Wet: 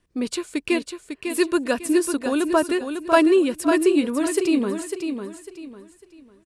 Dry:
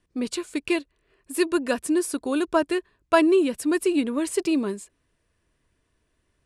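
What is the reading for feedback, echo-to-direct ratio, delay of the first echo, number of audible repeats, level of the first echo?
30%, -6.5 dB, 0.55 s, 3, -7.0 dB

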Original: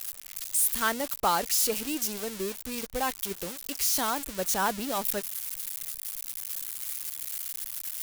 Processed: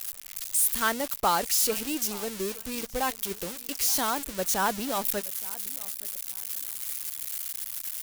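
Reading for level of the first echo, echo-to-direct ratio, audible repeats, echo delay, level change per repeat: -21.0 dB, -21.0 dB, 2, 0.87 s, -12.5 dB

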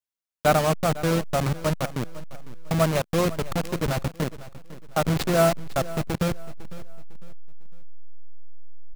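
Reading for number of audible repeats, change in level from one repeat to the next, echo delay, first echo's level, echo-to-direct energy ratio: 2, -9.0 dB, 0.503 s, -17.0 dB, -16.5 dB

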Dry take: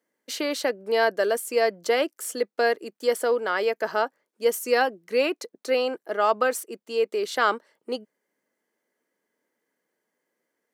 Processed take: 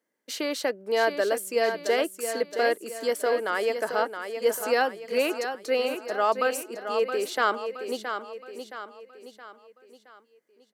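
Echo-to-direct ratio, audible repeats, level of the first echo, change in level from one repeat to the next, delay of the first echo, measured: -7.0 dB, 4, -8.0 dB, -7.0 dB, 0.67 s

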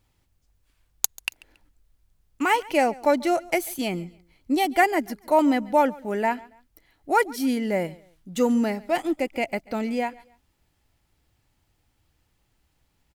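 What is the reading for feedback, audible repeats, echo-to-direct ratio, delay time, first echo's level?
31%, 2, -22.0 dB, 0.139 s, -22.5 dB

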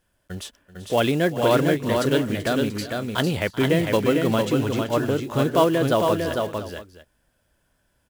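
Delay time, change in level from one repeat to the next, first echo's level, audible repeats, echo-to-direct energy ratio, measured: 0.384 s, no steady repeat, -17.0 dB, 3, -4.0 dB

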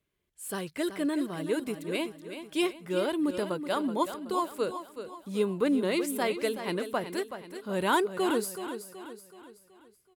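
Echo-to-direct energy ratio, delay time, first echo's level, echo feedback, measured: -9.0 dB, 0.376 s, -10.0 dB, 45%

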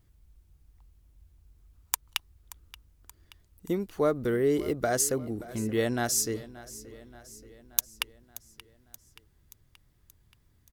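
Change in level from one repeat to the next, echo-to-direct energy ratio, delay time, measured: -5.0 dB, -16.5 dB, 0.578 s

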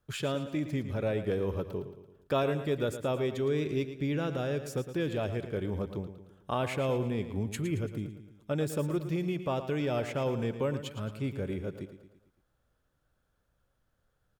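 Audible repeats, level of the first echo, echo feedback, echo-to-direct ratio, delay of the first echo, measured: 4, -11.0 dB, 50%, -10.0 dB, 0.112 s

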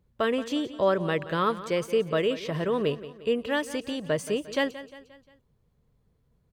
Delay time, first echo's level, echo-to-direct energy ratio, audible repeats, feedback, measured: 0.176 s, -15.0 dB, -14.0 dB, 4, 48%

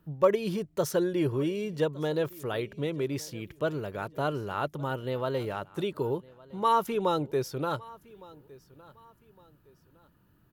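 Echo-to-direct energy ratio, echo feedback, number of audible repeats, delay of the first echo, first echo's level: -22.0 dB, 33%, 2, 1.161 s, -22.5 dB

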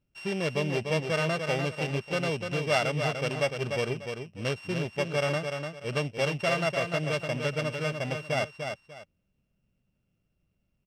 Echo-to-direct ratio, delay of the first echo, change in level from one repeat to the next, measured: -5.5 dB, 0.296 s, -11.5 dB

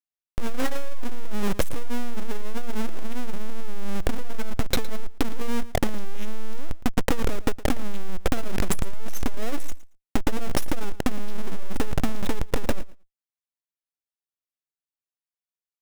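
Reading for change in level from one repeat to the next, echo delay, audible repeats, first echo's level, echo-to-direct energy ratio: -16.5 dB, 0.113 s, 2, -18.0 dB, -18.0 dB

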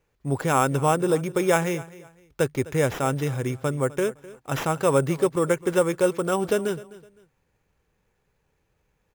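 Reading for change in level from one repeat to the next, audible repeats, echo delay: -11.0 dB, 2, 0.256 s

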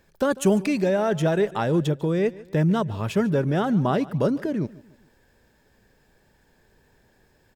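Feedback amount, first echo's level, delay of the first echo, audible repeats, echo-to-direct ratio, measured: 41%, -20.0 dB, 0.146 s, 2, -19.0 dB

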